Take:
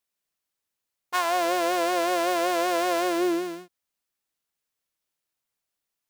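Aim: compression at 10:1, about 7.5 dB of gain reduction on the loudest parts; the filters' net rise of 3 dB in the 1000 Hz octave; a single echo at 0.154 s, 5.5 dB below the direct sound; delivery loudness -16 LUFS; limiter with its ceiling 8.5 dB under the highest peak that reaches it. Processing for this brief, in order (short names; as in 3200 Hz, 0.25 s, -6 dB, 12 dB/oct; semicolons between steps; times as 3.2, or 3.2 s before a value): bell 1000 Hz +4.5 dB; compressor 10:1, threshold -26 dBFS; limiter -24.5 dBFS; echo 0.154 s -5.5 dB; gain +16.5 dB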